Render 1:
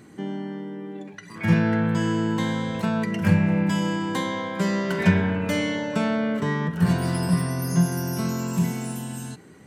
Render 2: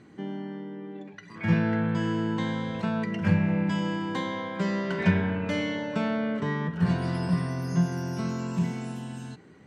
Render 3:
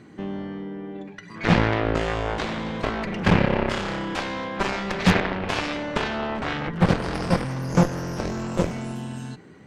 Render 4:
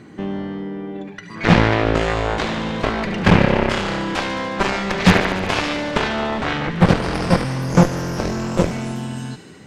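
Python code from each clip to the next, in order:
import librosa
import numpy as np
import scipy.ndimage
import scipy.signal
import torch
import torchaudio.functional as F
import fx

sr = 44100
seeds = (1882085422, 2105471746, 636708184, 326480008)

y1 = scipy.signal.sosfilt(scipy.signal.butter(2, 4800.0, 'lowpass', fs=sr, output='sos'), x)
y1 = y1 * 10.0 ** (-4.0 / 20.0)
y2 = fx.cheby_harmonics(y1, sr, harmonics=(4, 6, 7, 8), levels_db=(-16, -20, -13, -23), full_scale_db=-10.0)
y2 = fx.fold_sine(y2, sr, drive_db=6, ceiling_db=-9.0)
y3 = fx.echo_wet_highpass(y2, sr, ms=73, feedback_pct=81, hz=2200.0, wet_db=-10.5)
y3 = y3 * 10.0 ** (5.5 / 20.0)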